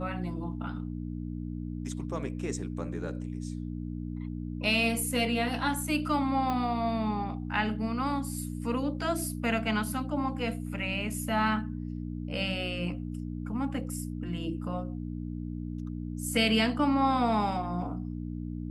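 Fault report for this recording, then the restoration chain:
hum 60 Hz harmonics 5 -36 dBFS
6.50 s: pop -19 dBFS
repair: de-click; de-hum 60 Hz, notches 5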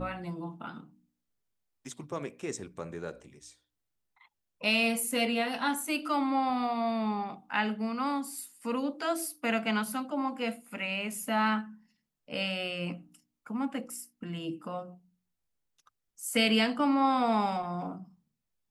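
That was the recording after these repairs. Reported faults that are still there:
6.50 s: pop

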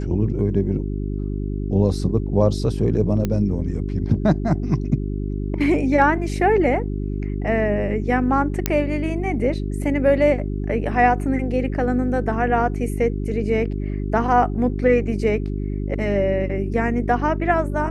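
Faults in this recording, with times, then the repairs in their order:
hum 50 Hz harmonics 8 -25 dBFS
3.25 s: pop -10 dBFS
8.66 s: pop -3 dBFS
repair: de-click; de-hum 50 Hz, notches 8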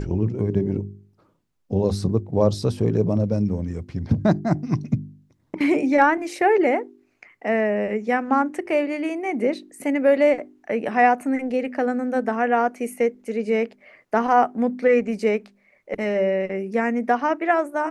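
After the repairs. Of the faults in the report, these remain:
nothing left

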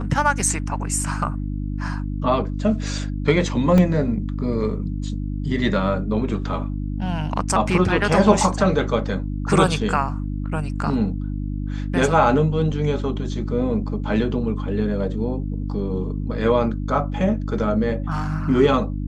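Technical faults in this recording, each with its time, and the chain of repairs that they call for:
hum 50 Hz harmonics 6 -26 dBFS
3.78 s: dropout 2.1 ms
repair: de-hum 50 Hz, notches 6; interpolate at 3.78 s, 2.1 ms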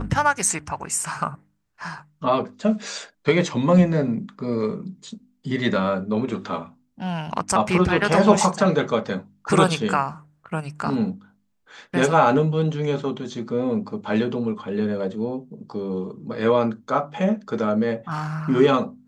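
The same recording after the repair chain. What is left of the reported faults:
nothing left

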